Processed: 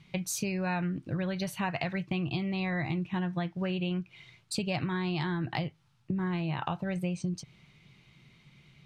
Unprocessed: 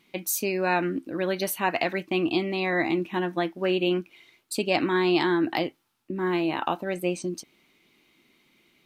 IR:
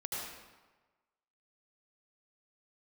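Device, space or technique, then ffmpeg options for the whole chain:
jukebox: -af "lowpass=6.9k,lowshelf=f=200:t=q:w=3:g=12.5,acompressor=threshold=-31dB:ratio=5,volume=1.5dB"

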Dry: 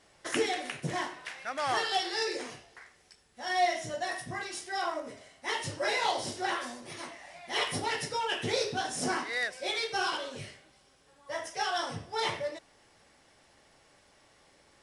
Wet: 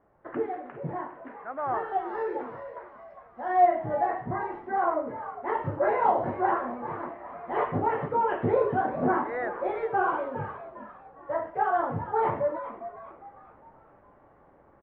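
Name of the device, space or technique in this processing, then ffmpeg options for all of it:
action camera in a waterproof case: -filter_complex "[0:a]acrossover=split=3900[a][b];[b]acompressor=threshold=-51dB:ratio=4:attack=1:release=60[c];[a][c]amix=inputs=2:normalize=0,asettb=1/sr,asplit=3[d][e][f];[d]atrim=end=2.084[g];[e]atrim=start=2.08:end=3.66,asetpts=PTS-STARTPTS,afade=t=in:d=0.004:c=qsin,afade=t=out:st=1.576:d=0.004:c=qsin,bass=f=250:g=-2,treble=f=4k:g=11[h];[f]atrim=start=3.656[i];[g][h]acrossfade=d=0.004:c1=hsin:c2=qsin[j];[j][i]acrossfade=d=0.004:c1=qsin:c2=hsin,asplit=5[k][l][m][n][o];[l]adelay=406,afreqshift=110,volume=-12dB[p];[m]adelay=812,afreqshift=220,volume=-20dB[q];[n]adelay=1218,afreqshift=330,volume=-27.9dB[r];[o]adelay=1624,afreqshift=440,volume=-35.9dB[s];[k][p][q][r][s]amix=inputs=5:normalize=0,lowpass=f=1.3k:w=0.5412,lowpass=f=1.3k:w=1.3066,dynaudnorm=f=710:g=7:m=8dB" -ar 24000 -c:a aac -b:a 48k

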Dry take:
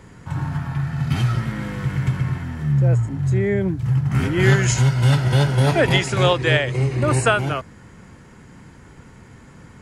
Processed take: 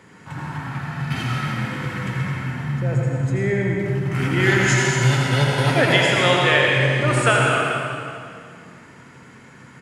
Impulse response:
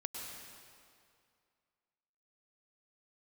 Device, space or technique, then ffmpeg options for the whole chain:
PA in a hall: -filter_complex "[0:a]highpass=150,equalizer=f=2.1k:t=o:w=1.7:g=5,aecho=1:1:82:0.447[a];[1:a]atrim=start_sample=2205[b];[a][b]afir=irnorm=-1:irlink=0"

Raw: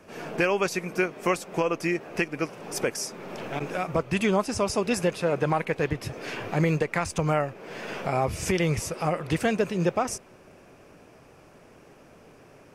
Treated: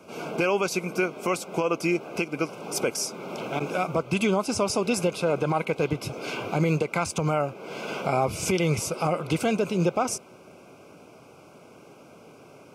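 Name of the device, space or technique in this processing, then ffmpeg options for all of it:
PA system with an anti-feedback notch: -af "highpass=120,asuperstop=centerf=1800:order=8:qfactor=3.8,alimiter=limit=-16.5dB:level=0:latency=1:release=66,volume=3dB"

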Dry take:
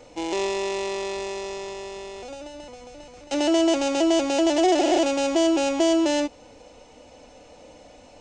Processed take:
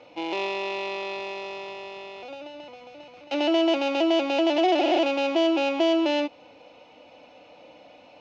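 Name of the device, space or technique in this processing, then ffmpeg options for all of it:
kitchen radio: -af "highpass=180,equalizer=f=230:t=q:w=4:g=-6,equalizer=f=420:t=q:w=4:g=-7,equalizer=f=1.8k:t=q:w=4:g=-5,equalizer=f=2.5k:t=q:w=4:g=5,lowpass=f=4.1k:w=0.5412,lowpass=f=4.1k:w=1.3066"

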